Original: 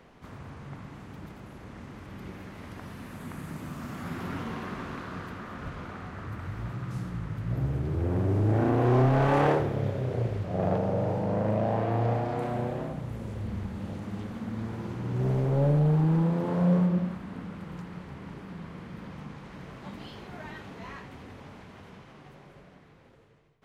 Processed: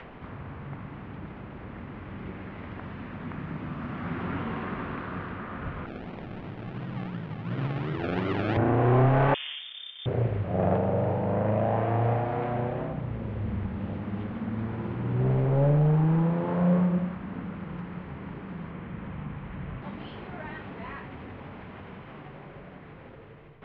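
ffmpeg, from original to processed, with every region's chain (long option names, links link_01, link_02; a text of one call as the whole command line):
ffmpeg -i in.wav -filter_complex "[0:a]asettb=1/sr,asplit=3[link_01][link_02][link_03];[link_01]atrim=end=5.864[link_04];[link_02]atrim=start=5.86:end=8.57,asetpts=PTS-STARTPTS,afade=type=in:duration=0.004:curve=qsin,afade=type=out:start_time=2.706:duration=0.004:curve=qsin,highpass=frequency=140:width=0.5412,highpass=frequency=140:width=1.3066,acrusher=samples=36:mix=1:aa=0.000001:lfo=1:lforange=21.6:lforate=2.8[link_05];[link_03]atrim=start=8.566[link_06];[link_04][link_05]acrossfade=duration=0.004:curve1=hsin:curve2=qsin[link_07];[link_07][link_06]acrossfade=duration=0.004:curve1=qsin:curve2=hsin,asettb=1/sr,asplit=3[link_08][link_09][link_10];[link_08]atrim=end=9.344[link_11];[link_09]atrim=start=9.34:end=10.06,asetpts=PTS-STARTPTS,afade=type=in:duration=0.004:curve=qsin,afade=type=out:start_time=0.716:duration=0.004:curve=qsin,agate=range=-33dB:threshold=-23dB:ratio=3:release=100:detection=peak,acompressor=threshold=-35dB:ratio=4:attack=3.2:release=140:knee=1:detection=peak,lowpass=frequency=3100:width_type=q:width=0.5098,lowpass=frequency=3100:width_type=q:width=0.6013,lowpass=frequency=3100:width_type=q:width=0.9,lowpass=frequency=3100:width_type=q:width=2.563,afreqshift=-3700[link_12];[link_10]atrim=start=10.056[link_13];[link_11][link_12]acrossfade=duration=0.004:curve1=hsin:curve2=qsin[link_14];[link_14][link_13]acrossfade=duration=0.004:curve1=qsin:curve2=hsin,asettb=1/sr,asplit=3[link_15][link_16][link_17];[link_15]atrim=end=18.714[link_18];[link_16]atrim=start=18.71:end=19.82,asetpts=PTS-STARTPTS,afade=type=in:duration=0.004:curve=qsin,afade=type=out:start_time=1.106:duration=0.004:curve=qsin,lowpass=frequency=3800:width=0.5412,lowpass=frequency=3800:width=1.3066,asubboost=boost=7:cutoff=180[link_19];[link_17]atrim=start=19.816[link_20];[link_18][link_19]acrossfade=duration=0.004:curve1=hsin:curve2=qsin[link_21];[link_21][link_20]acrossfade=duration=0.004:curve1=qsin:curve2=hsin,lowpass=frequency=3000:width=0.5412,lowpass=frequency=3000:width=1.3066,adynamicequalizer=threshold=0.02:dfrequency=260:dqfactor=0.73:tfrequency=260:tqfactor=0.73:attack=5:release=100:ratio=0.375:range=2:mode=cutabove:tftype=bell,acompressor=mode=upward:threshold=-40dB:ratio=2.5,volume=3dB" out.wav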